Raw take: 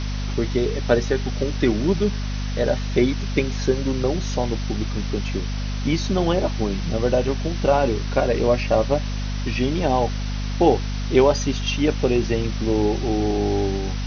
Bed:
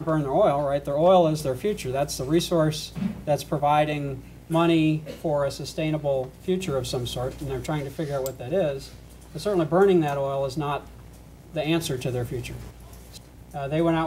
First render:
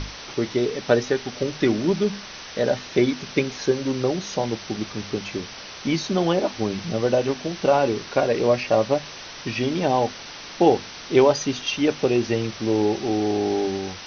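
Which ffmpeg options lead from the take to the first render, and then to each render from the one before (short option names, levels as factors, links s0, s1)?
-af "bandreject=f=50:t=h:w=6,bandreject=f=100:t=h:w=6,bandreject=f=150:t=h:w=6,bandreject=f=200:t=h:w=6,bandreject=f=250:t=h:w=6"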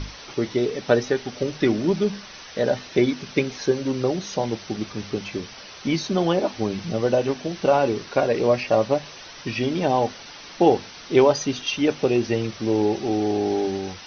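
-af "afftdn=nr=6:nf=-39"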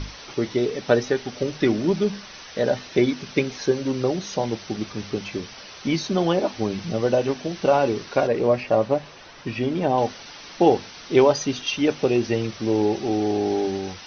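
-filter_complex "[0:a]asettb=1/sr,asplit=3[s0][s1][s2];[s0]atrim=end=8.274[s3];[s1]atrim=start=8.27:end=9.98,asetpts=PTS-STARTPTS,afade=t=in:d=0.004:c=qsin,afade=t=out:st=1.706:d=0.004:c=qsin,highshelf=f=3300:g=-10.5[s4];[s2]atrim=start=9.976[s5];[s3][s4]acrossfade=d=0.004:c1=hsin:c2=qsin[s6];[s6][s5]acrossfade=d=0.004:c1=qsin:c2=hsin"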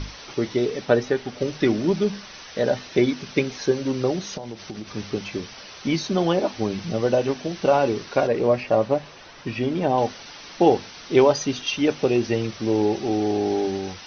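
-filter_complex "[0:a]asettb=1/sr,asplit=3[s0][s1][s2];[s0]atrim=end=0.854[s3];[s1]atrim=start=0.85:end=1.41,asetpts=PTS-STARTPTS,afade=t=in:d=0.004:c=qsin,afade=t=out:st=0.556:d=0.004:c=qsin,highshelf=f=5300:g=-8.5[s4];[s2]atrim=start=1.406[s5];[s3][s4]acrossfade=d=0.004:c1=hsin:c2=qsin[s6];[s6][s5]acrossfade=d=0.004:c1=qsin:c2=hsin,asettb=1/sr,asplit=3[s7][s8][s9];[s7]atrim=end=4.374[s10];[s8]atrim=start=4.37:end=4.95,asetpts=PTS-STARTPTS,afade=t=in:d=0.004:c=qsin,afade=t=out:st=0.576:d=0.004:c=qsin,acompressor=threshold=0.0355:ratio=10:attack=3.2:release=140:knee=1:detection=peak[s11];[s9]atrim=start=4.946[s12];[s10][s11]acrossfade=d=0.004:c1=hsin:c2=qsin[s13];[s13][s12]acrossfade=d=0.004:c1=qsin:c2=hsin"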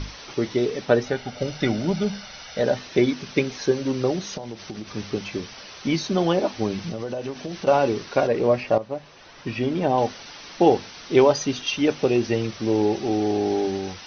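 -filter_complex "[0:a]asettb=1/sr,asplit=3[s0][s1][s2];[s0]atrim=end=1.064[s3];[s1]atrim=start=1.06:end=2.61,asetpts=PTS-STARTPTS,afade=t=in:d=0.004:c=qsin,afade=t=out:st=1.546:d=0.004:c=qsin,aecho=1:1:1.4:0.51,atrim=end_sample=68355[s4];[s2]atrim=start=2.606[s5];[s3][s4]acrossfade=d=0.004:c1=hsin:c2=qsin[s6];[s6][s5]acrossfade=d=0.004:c1=qsin:c2=hsin,asettb=1/sr,asplit=3[s7][s8][s9];[s7]atrim=end=6.894[s10];[s8]atrim=start=6.89:end=7.67,asetpts=PTS-STARTPTS,afade=t=in:d=0.004:c=qsin,afade=t=out:st=0.776:d=0.004:c=qsin,acompressor=threshold=0.0501:ratio=6:attack=3.2:release=140:knee=1:detection=peak[s11];[s9]atrim=start=7.666[s12];[s10][s11]acrossfade=d=0.004:c1=hsin:c2=qsin[s13];[s13][s12]acrossfade=d=0.004:c1=qsin:c2=hsin,asplit=2[s14][s15];[s14]atrim=end=8.78,asetpts=PTS-STARTPTS,afade=t=out:st=8.776:d=0.004:c=hsin:silence=0.199526[s16];[s15]atrim=start=8.78,asetpts=PTS-STARTPTS,afade=t=in:d=0.72:silence=0.199526[s17];[s16][s17]concat=n=2:v=0:a=1"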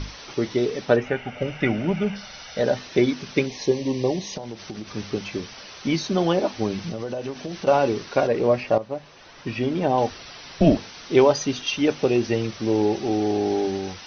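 -filter_complex "[0:a]asettb=1/sr,asplit=3[s0][s1][s2];[s0]atrim=end=0.964[s3];[s1]atrim=start=0.96:end=2.16,asetpts=PTS-STARTPTS,afade=t=in:d=0.004:c=qsin,afade=t=out:st=1.196:d=0.004:c=qsin,highshelf=f=3300:t=q:w=3:g=-8[s4];[s2]atrim=start=2.156[s5];[s3][s4]acrossfade=d=0.004:c1=hsin:c2=qsin[s6];[s6][s5]acrossfade=d=0.004:c1=qsin:c2=hsin,asettb=1/sr,asplit=3[s7][s8][s9];[s7]atrim=end=3.464[s10];[s8]atrim=start=3.46:end=4.36,asetpts=PTS-STARTPTS,afade=t=in:d=0.004:c=qsin,afade=t=out:st=0.896:d=0.004:c=qsin,asuperstop=centerf=1400:order=8:qfactor=2.3[s11];[s9]atrim=start=4.356[s12];[s10][s11]acrossfade=d=0.004:c1=hsin:c2=qsin[s13];[s13][s12]acrossfade=d=0.004:c1=qsin:c2=hsin,asettb=1/sr,asplit=3[s14][s15][s16];[s14]atrim=end=10.104[s17];[s15]atrim=start=10.1:end=10.77,asetpts=PTS-STARTPTS,afade=t=in:d=0.004:c=qsin,afade=t=out:st=0.666:d=0.004:c=qsin,afreqshift=-160[s18];[s16]atrim=start=10.766[s19];[s17][s18]acrossfade=d=0.004:c1=hsin:c2=qsin[s20];[s20][s19]acrossfade=d=0.004:c1=qsin:c2=hsin"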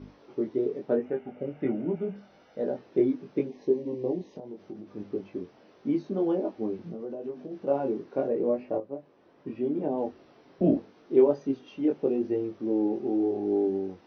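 -af "flanger=delay=20:depth=2.9:speed=0.81,bandpass=f=330:t=q:w=1.5:csg=0"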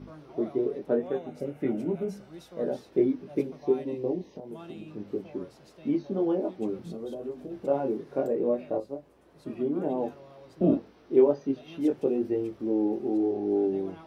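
-filter_complex "[1:a]volume=0.0596[s0];[0:a][s0]amix=inputs=2:normalize=0"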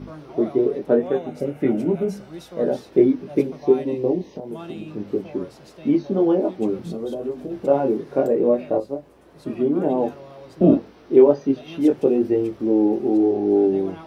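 -af "volume=2.66,alimiter=limit=0.708:level=0:latency=1"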